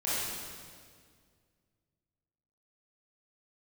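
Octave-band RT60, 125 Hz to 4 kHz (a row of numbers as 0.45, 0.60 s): 2.7, 2.4, 2.1, 1.8, 1.7, 1.7 s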